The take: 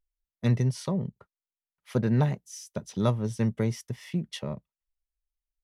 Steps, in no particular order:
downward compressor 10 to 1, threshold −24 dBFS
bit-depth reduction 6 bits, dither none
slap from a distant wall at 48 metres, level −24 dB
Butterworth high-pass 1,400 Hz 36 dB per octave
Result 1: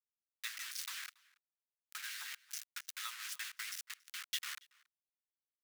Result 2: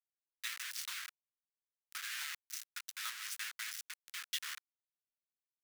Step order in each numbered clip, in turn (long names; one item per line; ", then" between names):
bit-depth reduction, then slap from a distant wall, then downward compressor, then Butterworth high-pass
downward compressor, then slap from a distant wall, then bit-depth reduction, then Butterworth high-pass